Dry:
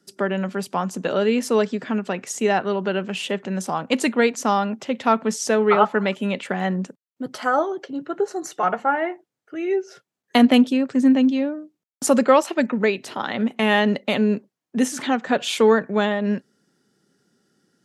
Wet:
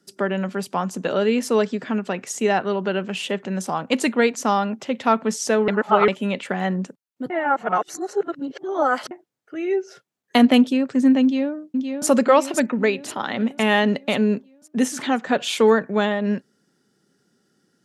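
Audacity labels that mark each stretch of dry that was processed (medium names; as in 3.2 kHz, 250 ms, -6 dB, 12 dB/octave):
5.680000	6.080000	reverse
7.300000	9.110000	reverse
11.220000	12.070000	echo throw 520 ms, feedback 55%, level -5.5 dB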